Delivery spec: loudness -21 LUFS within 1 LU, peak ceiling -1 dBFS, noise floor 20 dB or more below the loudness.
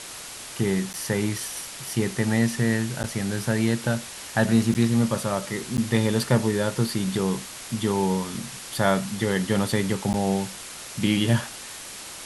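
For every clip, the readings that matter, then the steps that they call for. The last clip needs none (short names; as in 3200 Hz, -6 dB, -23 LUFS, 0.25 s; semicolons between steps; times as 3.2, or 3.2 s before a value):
dropouts 5; longest dropout 9.6 ms; noise floor -39 dBFS; noise floor target -45 dBFS; loudness -25.0 LUFS; peak -6.0 dBFS; loudness target -21.0 LUFS
-> interpolate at 0.93/3.03/4.74/5.77/10.13, 9.6 ms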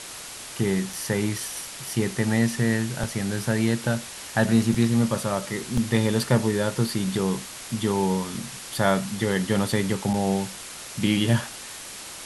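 dropouts 0; noise floor -39 dBFS; noise floor target -45 dBFS
-> noise print and reduce 6 dB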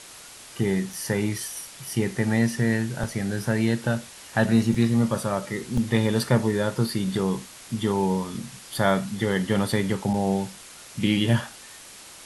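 noise floor -45 dBFS; loudness -25.0 LUFS; peak -6.0 dBFS; loudness target -21.0 LUFS
-> gain +4 dB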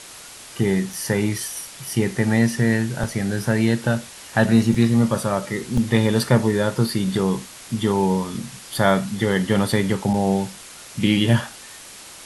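loudness -21.0 LUFS; peak -2.0 dBFS; noise floor -41 dBFS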